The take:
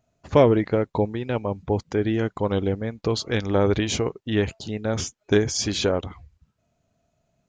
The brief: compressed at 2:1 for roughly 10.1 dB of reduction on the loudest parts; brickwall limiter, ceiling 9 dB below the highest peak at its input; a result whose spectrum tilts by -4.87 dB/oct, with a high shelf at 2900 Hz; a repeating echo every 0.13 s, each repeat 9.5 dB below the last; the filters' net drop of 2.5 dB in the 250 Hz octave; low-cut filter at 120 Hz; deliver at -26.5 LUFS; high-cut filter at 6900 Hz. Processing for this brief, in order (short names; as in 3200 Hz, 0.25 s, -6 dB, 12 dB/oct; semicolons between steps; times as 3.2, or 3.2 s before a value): HPF 120 Hz; LPF 6900 Hz; bell 250 Hz -3 dB; high shelf 2900 Hz -3.5 dB; compressor 2:1, threshold -30 dBFS; limiter -20.5 dBFS; feedback echo 0.13 s, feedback 33%, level -9.5 dB; gain +6 dB